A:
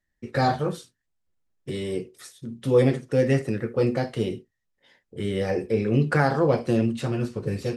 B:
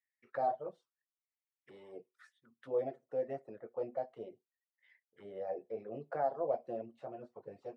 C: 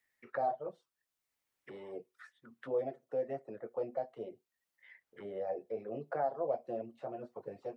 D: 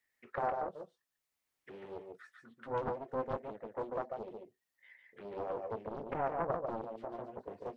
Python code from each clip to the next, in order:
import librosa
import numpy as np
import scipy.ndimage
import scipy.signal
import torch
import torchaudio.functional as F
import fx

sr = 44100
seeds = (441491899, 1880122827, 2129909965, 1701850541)

y1 = fx.dereverb_blind(x, sr, rt60_s=0.51)
y1 = fx.auto_wah(y1, sr, base_hz=660.0, top_hz=2200.0, q=5.7, full_db=-25.5, direction='down')
y1 = y1 * librosa.db_to_amplitude(-3.0)
y2 = fx.band_squash(y1, sr, depth_pct=40)
y2 = y2 * librosa.db_to_amplitude(1.5)
y3 = y2 + 10.0 ** (-4.0 / 20.0) * np.pad(y2, (int(144 * sr / 1000.0), 0))[:len(y2)]
y3 = fx.doppler_dist(y3, sr, depth_ms=0.96)
y3 = y3 * librosa.db_to_amplitude(-1.5)